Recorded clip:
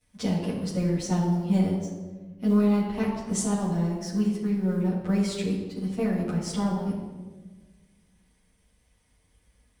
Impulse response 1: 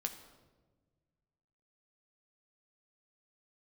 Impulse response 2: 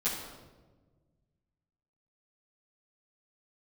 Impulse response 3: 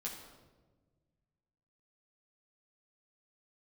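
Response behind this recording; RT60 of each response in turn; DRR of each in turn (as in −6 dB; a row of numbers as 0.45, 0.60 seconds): 2; 1.4, 1.3, 1.3 seconds; 4.5, −12.5, −3.5 decibels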